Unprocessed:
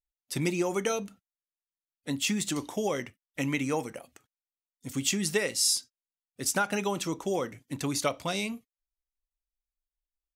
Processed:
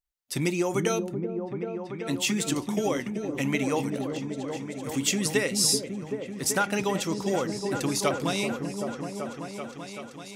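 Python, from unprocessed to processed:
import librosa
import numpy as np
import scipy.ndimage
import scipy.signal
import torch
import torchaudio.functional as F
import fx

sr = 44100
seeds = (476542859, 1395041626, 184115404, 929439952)

y = fx.echo_opening(x, sr, ms=384, hz=400, octaves=1, feedback_pct=70, wet_db=-3)
y = y * 10.0 ** (2.0 / 20.0)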